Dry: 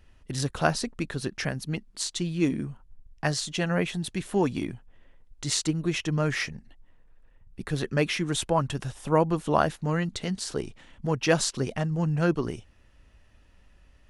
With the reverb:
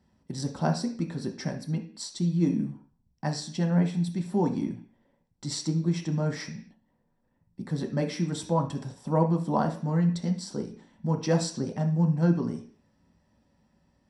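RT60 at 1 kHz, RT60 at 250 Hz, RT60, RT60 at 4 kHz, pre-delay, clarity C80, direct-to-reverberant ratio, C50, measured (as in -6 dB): 0.45 s, 0.55 s, 0.45 s, no reading, 3 ms, 15.5 dB, 1.5 dB, 10.5 dB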